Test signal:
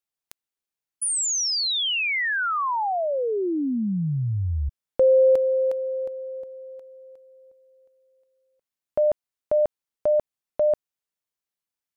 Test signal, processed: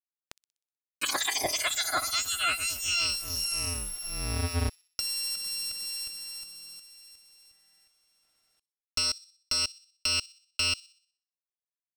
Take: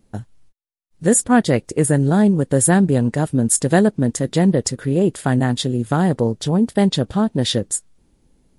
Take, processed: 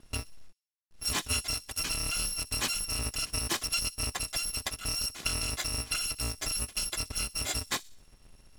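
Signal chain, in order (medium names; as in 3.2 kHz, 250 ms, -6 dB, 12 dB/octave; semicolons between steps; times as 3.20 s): bit-reversed sample order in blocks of 256 samples; compression 4:1, threshold -27 dBFS; companded quantiser 6-bit; distance through air 57 m; feedback echo behind a high-pass 62 ms, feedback 48%, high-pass 4.1 kHz, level -17.5 dB; trim +4 dB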